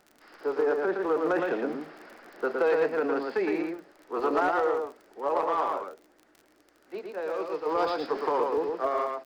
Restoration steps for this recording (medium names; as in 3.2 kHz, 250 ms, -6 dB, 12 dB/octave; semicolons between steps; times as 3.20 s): clip repair -17.5 dBFS; de-click; inverse comb 114 ms -3.5 dB